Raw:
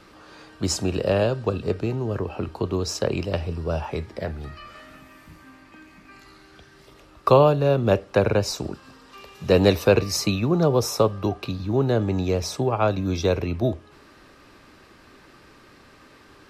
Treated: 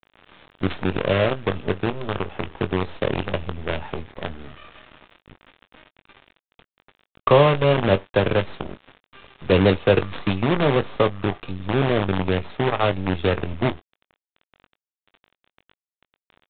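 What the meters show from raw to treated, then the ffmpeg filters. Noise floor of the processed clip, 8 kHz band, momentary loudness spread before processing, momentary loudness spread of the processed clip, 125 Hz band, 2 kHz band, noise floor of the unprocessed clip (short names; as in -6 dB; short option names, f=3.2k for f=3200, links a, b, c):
under -85 dBFS, under -40 dB, 13 LU, 15 LU, 0.0 dB, +5.5 dB, -52 dBFS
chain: -filter_complex "[0:a]aresample=16000,acrusher=bits=4:dc=4:mix=0:aa=0.000001,aresample=44100,asplit=2[a][b];[b]adelay=21,volume=-12dB[c];[a][c]amix=inputs=2:normalize=0" -ar 8000 -c:a pcm_mulaw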